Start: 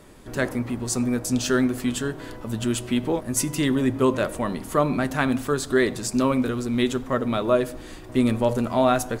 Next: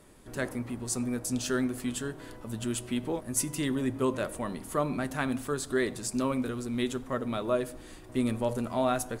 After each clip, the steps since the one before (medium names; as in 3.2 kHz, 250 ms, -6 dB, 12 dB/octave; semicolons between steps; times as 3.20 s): peaking EQ 9.7 kHz +6 dB 0.61 oct; trim -8 dB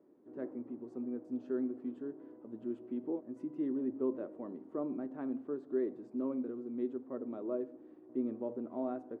ladder band-pass 360 Hz, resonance 50%; trim +3 dB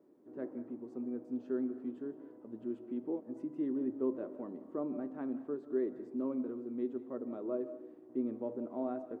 reverberation RT60 0.55 s, pre-delay 120 ms, DRR 13 dB